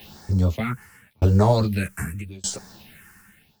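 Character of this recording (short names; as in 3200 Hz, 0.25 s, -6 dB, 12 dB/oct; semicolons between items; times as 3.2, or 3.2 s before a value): a quantiser's noise floor 8-bit, dither triangular; phasing stages 4, 0.87 Hz, lowest notch 580–2800 Hz; tremolo saw down 0.82 Hz, depth 100%; a shimmering, thickened sound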